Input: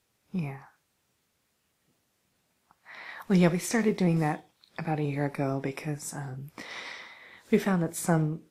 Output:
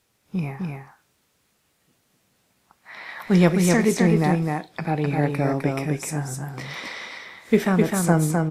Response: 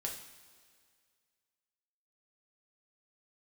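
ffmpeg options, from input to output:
-af "aecho=1:1:257:0.668,volume=5.5dB"

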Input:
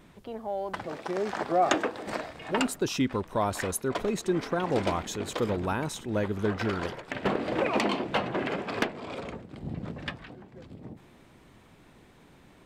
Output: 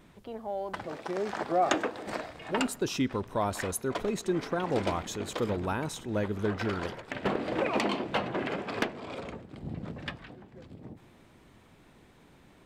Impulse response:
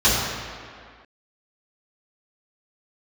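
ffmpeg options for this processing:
-filter_complex "[0:a]asplit=2[a][b];[1:a]atrim=start_sample=2205[c];[b][c]afir=irnorm=-1:irlink=0,volume=-44dB[d];[a][d]amix=inputs=2:normalize=0,volume=-2dB"

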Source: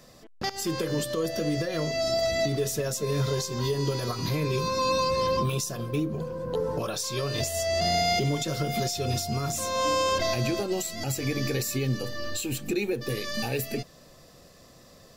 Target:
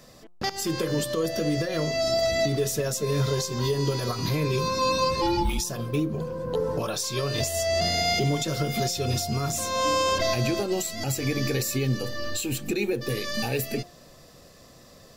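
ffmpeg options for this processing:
-filter_complex "[0:a]asplit=3[a][b][c];[a]afade=t=out:st=5.21:d=0.02[d];[b]afreqshift=-180,afade=t=in:st=5.21:d=0.02,afade=t=out:st=5.63:d=0.02[e];[c]afade=t=in:st=5.63:d=0.02[f];[d][e][f]amix=inputs=3:normalize=0,bandreject=f=176.2:t=h:w=4,bandreject=f=352.4:t=h:w=4,bandreject=f=528.6:t=h:w=4,bandreject=f=704.8:t=h:w=4,bandreject=f=881:t=h:w=4,bandreject=f=1.0572k:t=h:w=4,bandreject=f=1.2334k:t=h:w=4,volume=2dB"

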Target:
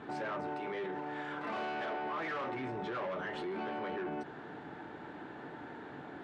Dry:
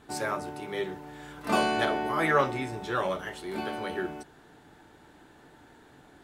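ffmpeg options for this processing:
-filter_complex "[0:a]asettb=1/sr,asplit=3[a][b][c];[a]atrim=end=0.484[d];[b]atrim=start=0.48:end=2.55,asetpts=PTS-STARTPTS,afade=t=in:d=0.004:c=qsin,afade=t=out:st=2.066:d=0.004:c=qsin,lowshelf=f=240:g=-11[e];[c]atrim=start=2.546[f];[d][e]acrossfade=d=0.004:c1=hsin:c2=qsin[g];[g][f]acrossfade=d=0.004:c1=qsin:c2=hsin,asoftclip=type=tanh:threshold=-33.5dB,highpass=140,lowpass=2.3k,alimiter=level_in=17dB:limit=-24dB:level=0:latency=1:release=52,volume=-17dB,volume=9dB"

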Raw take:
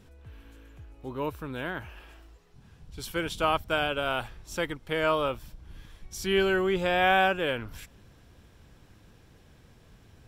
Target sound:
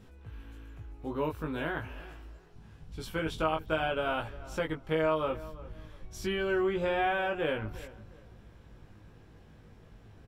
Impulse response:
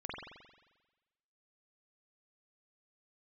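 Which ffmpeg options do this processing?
-filter_complex "[0:a]asetnsamples=n=441:p=0,asendcmd='2.97 highshelf g -11.5',highshelf=f=3.1k:g=-6,acompressor=threshold=-28dB:ratio=4,asplit=2[a][b];[b]adelay=19,volume=-3dB[c];[a][c]amix=inputs=2:normalize=0,asplit=2[d][e];[e]adelay=351,lowpass=f=1.8k:p=1,volume=-17dB,asplit=2[f][g];[g]adelay=351,lowpass=f=1.8k:p=1,volume=0.27,asplit=2[h][i];[i]adelay=351,lowpass=f=1.8k:p=1,volume=0.27[j];[d][f][h][j]amix=inputs=4:normalize=0"

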